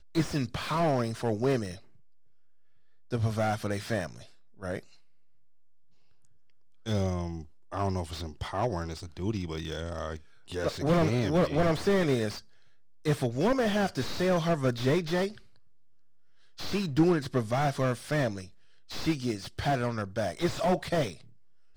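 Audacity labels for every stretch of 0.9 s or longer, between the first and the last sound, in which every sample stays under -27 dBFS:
1.700000	3.130000	silence
4.790000	6.880000	silence
15.270000	16.630000	silence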